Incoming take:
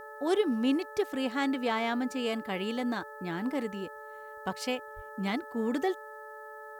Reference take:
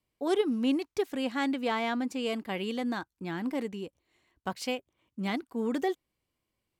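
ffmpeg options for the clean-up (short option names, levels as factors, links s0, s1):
-filter_complex "[0:a]bandreject=f=433.2:t=h:w=4,bandreject=f=866.4:t=h:w=4,bandreject=f=1299.6:t=h:w=4,bandreject=f=1732.8:t=h:w=4,bandreject=f=580:w=30,asplit=3[s0][s1][s2];[s0]afade=t=out:st=4.95:d=0.02[s3];[s1]highpass=f=140:w=0.5412,highpass=f=140:w=1.3066,afade=t=in:st=4.95:d=0.02,afade=t=out:st=5.07:d=0.02[s4];[s2]afade=t=in:st=5.07:d=0.02[s5];[s3][s4][s5]amix=inputs=3:normalize=0,agate=range=0.0891:threshold=0.0141"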